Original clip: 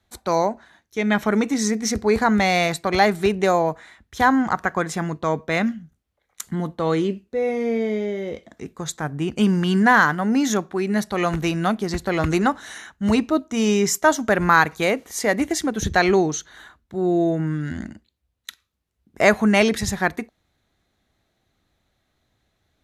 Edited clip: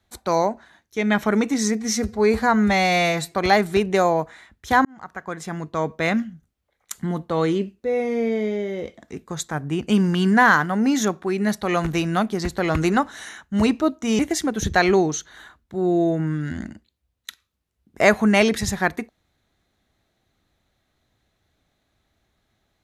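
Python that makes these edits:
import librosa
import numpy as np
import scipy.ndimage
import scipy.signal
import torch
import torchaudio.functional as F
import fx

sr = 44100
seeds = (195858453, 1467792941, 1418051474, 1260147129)

y = fx.edit(x, sr, fx.stretch_span(start_s=1.79, length_s=1.02, factor=1.5),
    fx.fade_in_span(start_s=4.34, length_s=1.16),
    fx.cut(start_s=13.68, length_s=1.71), tone=tone)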